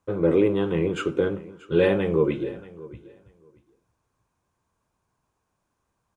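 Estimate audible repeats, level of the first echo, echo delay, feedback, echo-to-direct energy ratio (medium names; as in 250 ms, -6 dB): 2, -19.5 dB, 632 ms, 17%, -19.5 dB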